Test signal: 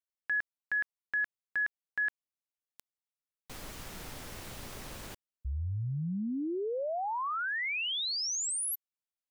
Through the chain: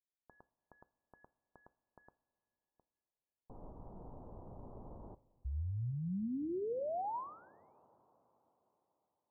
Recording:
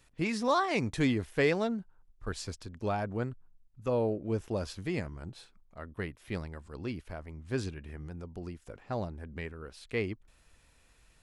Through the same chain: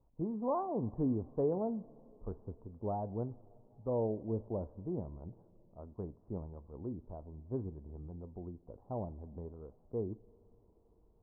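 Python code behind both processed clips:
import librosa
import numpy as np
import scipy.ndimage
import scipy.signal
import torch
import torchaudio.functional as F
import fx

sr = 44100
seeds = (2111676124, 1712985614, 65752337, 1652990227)

y = scipy.signal.sosfilt(scipy.signal.butter(8, 990.0, 'lowpass', fs=sr, output='sos'), x)
y = fx.rev_double_slope(y, sr, seeds[0], early_s=0.35, late_s=4.2, knee_db=-17, drr_db=14.0)
y = y * librosa.db_to_amplitude(-4.5)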